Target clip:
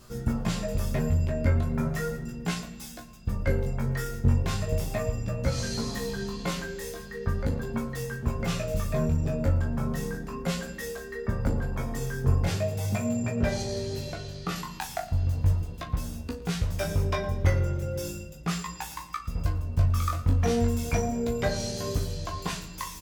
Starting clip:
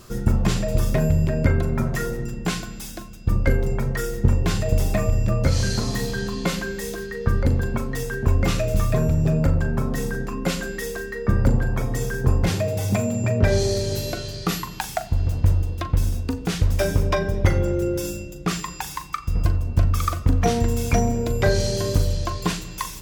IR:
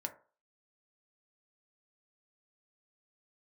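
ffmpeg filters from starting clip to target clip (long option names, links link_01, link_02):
-filter_complex "[0:a]asettb=1/sr,asplit=3[link_01][link_02][link_03];[link_01]atrim=end=13.624[link_04];[link_02]atrim=start=13.62:end=14.56,asetpts=PTS-STARTPTS,afade=type=in:duration=0.004:curve=qsin,afade=type=out:start_time=0.936:duration=0.004:curve=qsin,highshelf=frequency=5200:gain=-8[link_05];[link_03]atrim=start=14.556[link_06];[link_04][link_05]acrossfade=duration=0.004:curve1=hsin:curve2=qsin[link_07];[link_07][link_06]acrossfade=duration=0.004:curve1=qsin:curve2=hsin,aecho=1:1:114:0.112,asplit=2[link_08][link_09];[1:a]atrim=start_sample=2205,asetrate=43659,aresample=44100,adelay=13[link_10];[link_09][link_10]afir=irnorm=-1:irlink=0,volume=-6.5dB[link_11];[link_08][link_11]amix=inputs=2:normalize=0,flanger=delay=16.5:depth=5.7:speed=0.37,equalizer=frequency=340:width=7.4:gain=-9,volume=-3.5dB"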